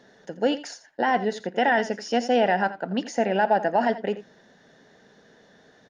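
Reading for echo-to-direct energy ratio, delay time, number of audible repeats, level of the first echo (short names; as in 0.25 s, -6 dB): -15.0 dB, 84 ms, 1, -15.0 dB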